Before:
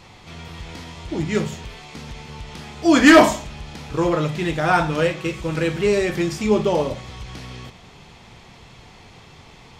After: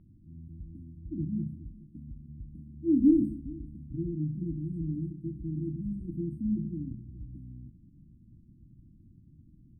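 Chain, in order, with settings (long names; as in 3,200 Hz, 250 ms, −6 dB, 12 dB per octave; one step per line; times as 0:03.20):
linear-phase brick-wall band-stop 340–8,300 Hz
high-frequency loss of the air 390 metres
single-tap delay 418 ms −21 dB
level −7 dB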